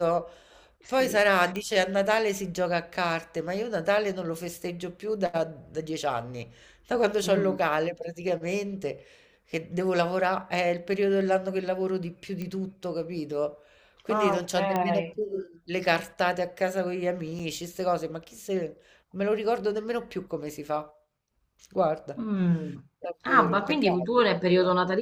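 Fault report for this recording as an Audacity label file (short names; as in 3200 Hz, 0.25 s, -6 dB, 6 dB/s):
1.560000	1.560000	pop -19 dBFS
12.420000	12.420000	pop -22 dBFS
14.760000	14.760000	pop -14 dBFS
17.390000	17.400000	gap 5.4 ms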